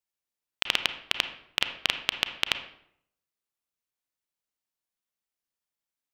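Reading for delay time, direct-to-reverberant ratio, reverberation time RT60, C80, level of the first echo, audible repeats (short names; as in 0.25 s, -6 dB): none, 8.5 dB, 0.70 s, 13.0 dB, none, none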